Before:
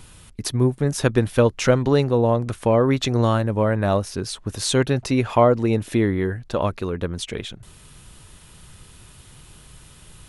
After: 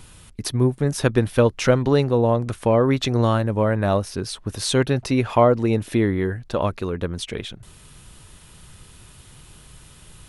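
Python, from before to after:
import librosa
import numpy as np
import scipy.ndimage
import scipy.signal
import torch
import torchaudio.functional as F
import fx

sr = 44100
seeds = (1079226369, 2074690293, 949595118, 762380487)

y = fx.dynamic_eq(x, sr, hz=7100.0, q=3.6, threshold_db=-51.0, ratio=4.0, max_db=-4)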